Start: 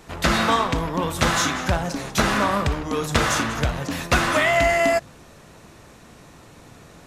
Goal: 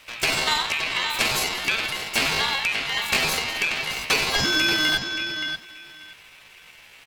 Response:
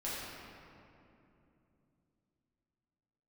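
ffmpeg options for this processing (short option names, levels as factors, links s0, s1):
-filter_complex "[0:a]asplit=2[s0][s1];[s1]adelay=578,lowpass=f=1900:p=1,volume=0.501,asplit=2[s2][s3];[s3]adelay=578,lowpass=f=1900:p=1,volume=0.17,asplit=2[s4][s5];[s5]adelay=578,lowpass=f=1900:p=1,volume=0.17[s6];[s0][s2][s4][s6]amix=inputs=4:normalize=0,aeval=exprs='val(0)*sin(2*PI*1800*n/s)':c=same,asetrate=60591,aresample=44100,atempo=0.727827"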